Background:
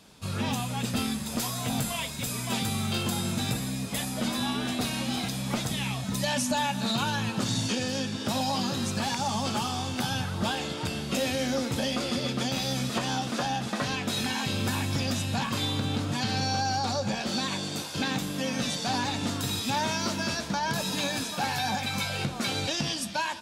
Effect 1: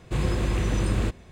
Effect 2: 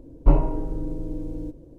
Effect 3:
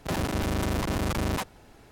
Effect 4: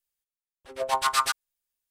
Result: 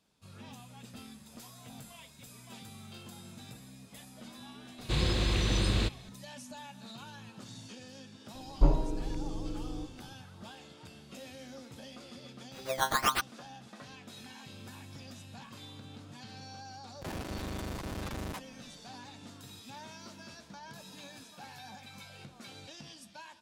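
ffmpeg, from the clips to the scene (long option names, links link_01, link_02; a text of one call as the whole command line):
ffmpeg -i bed.wav -i cue0.wav -i cue1.wav -i cue2.wav -i cue3.wav -filter_complex "[0:a]volume=-19.5dB[link_01];[1:a]equalizer=frequency=4000:width_type=o:width=0.96:gain=15[link_02];[4:a]acrusher=samples=12:mix=1:aa=0.000001:lfo=1:lforange=12:lforate=1.3[link_03];[link_02]atrim=end=1.31,asetpts=PTS-STARTPTS,volume=-4.5dB,afade=type=in:duration=0.004:curve=hsin,afade=type=out:start_time=1.306:duration=0.004:curve=hsin,adelay=4780[link_04];[2:a]atrim=end=1.78,asetpts=PTS-STARTPTS,volume=-7dB,afade=type=in:duration=0.004:curve=hsin,afade=type=out:start_time=1.776:duration=0.004:curve=hsin,adelay=8350[link_05];[link_03]atrim=end=1.9,asetpts=PTS-STARTPTS,volume=-4.5dB,afade=type=in:duration=0.004:curve=hsin,afade=type=out:start_time=1.896:duration=0.004:curve=hsin,adelay=11890[link_06];[3:a]atrim=end=1.91,asetpts=PTS-STARTPTS,volume=-11dB,afade=type=in:duration=0.004:curve=hsin,afade=type=out:start_time=1.906:duration=0.004:curve=hsin,adelay=16960[link_07];[link_01][link_04][link_05][link_06][link_07]amix=inputs=5:normalize=0" out.wav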